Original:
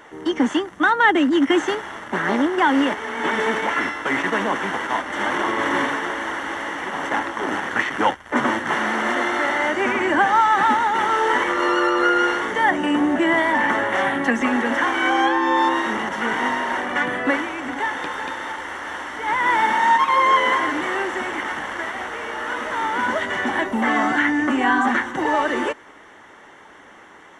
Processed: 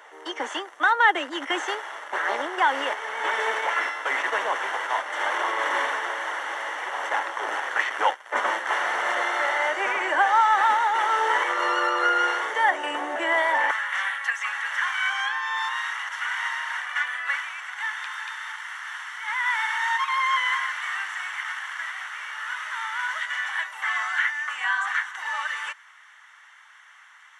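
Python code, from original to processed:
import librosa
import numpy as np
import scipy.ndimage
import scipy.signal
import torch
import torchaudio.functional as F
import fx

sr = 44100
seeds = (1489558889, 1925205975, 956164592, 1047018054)

y = fx.highpass(x, sr, hz=fx.steps((0.0, 500.0), (13.71, 1200.0)), slope=24)
y = F.gain(torch.from_numpy(y), -2.5).numpy()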